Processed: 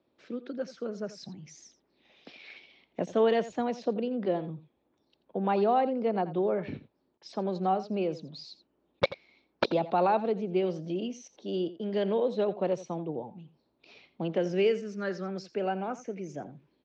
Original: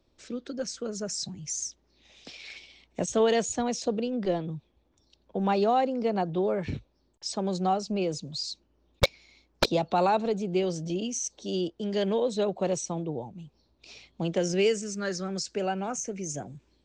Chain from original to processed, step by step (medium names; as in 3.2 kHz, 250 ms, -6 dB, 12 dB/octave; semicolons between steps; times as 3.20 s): high-pass 190 Hz 12 dB/octave; distance through air 300 m; delay 85 ms -15.5 dB